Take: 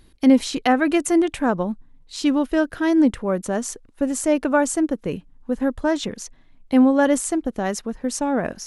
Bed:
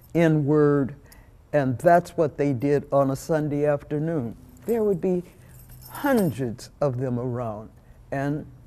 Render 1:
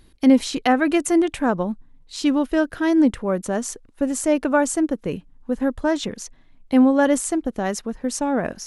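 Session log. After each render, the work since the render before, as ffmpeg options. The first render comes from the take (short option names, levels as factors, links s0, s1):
-af anull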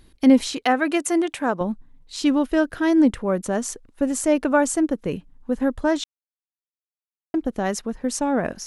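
-filter_complex "[0:a]asettb=1/sr,asplit=3[s0][s1][s2];[s0]atrim=end=0.534[s3];[s1]atrim=start=0.53:end=1.61,asetpts=PTS-STARTPTS,afade=t=in:d=0.004:c=qsin,afade=t=out:st=1.076:d=0.004:c=qsin,highpass=f=360:p=1[s4];[s2]atrim=start=1.606[s5];[s3][s4]acrossfade=d=0.004:c1=hsin:c2=qsin[s6];[s6][s5]acrossfade=d=0.004:c1=qsin:c2=hsin,asplit=3[s7][s8][s9];[s7]atrim=end=6.04,asetpts=PTS-STARTPTS,afade=t=out:st=6.036:d=0.004:c=hsin[s10];[s8]atrim=start=6.04:end=7.34,asetpts=PTS-STARTPTS,volume=0[s11];[s9]atrim=start=7.34,asetpts=PTS-STARTPTS,afade=t=in:d=0.004:c=hsin[s12];[s10][s11][s12]concat=n=3:v=0:a=1"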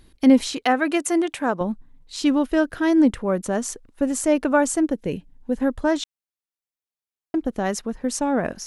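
-filter_complex "[0:a]asettb=1/sr,asplit=3[s0][s1][s2];[s0]atrim=end=4.924[s3];[s1]atrim=start=4.92:end=5.57,asetpts=PTS-STARTPTS,afade=t=in:d=0.004:c=qsin,afade=t=out:st=0.646:d=0.004:c=qsin,equalizer=f=1200:t=o:w=0.34:g=-14[s4];[s2]atrim=start=5.566[s5];[s3][s4]acrossfade=d=0.004:c1=hsin:c2=qsin[s6];[s6][s5]acrossfade=d=0.004:c1=qsin:c2=hsin"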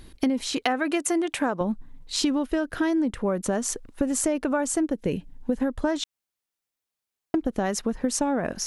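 -filter_complex "[0:a]asplit=2[s0][s1];[s1]alimiter=limit=0.224:level=0:latency=1:release=22,volume=1[s2];[s0][s2]amix=inputs=2:normalize=0,acompressor=threshold=0.0891:ratio=12"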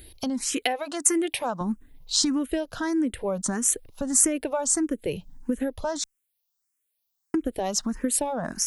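-filter_complex "[0:a]crystalizer=i=2:c=0,asplit=2[s0][s1];[s1]afreqshift=1.6[s2];[s0][s2]amix=inputs=2:normalize=1"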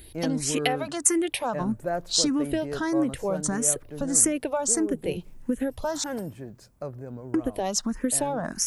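-filter_complex "[1:a]volume=0.251[s0];[0:a][s0]amix=inputs=2:normalize=0"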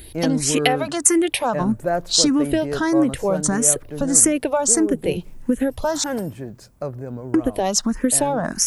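-af "volume=2.24,alimiter=limit=0.891:level=0:latency=1"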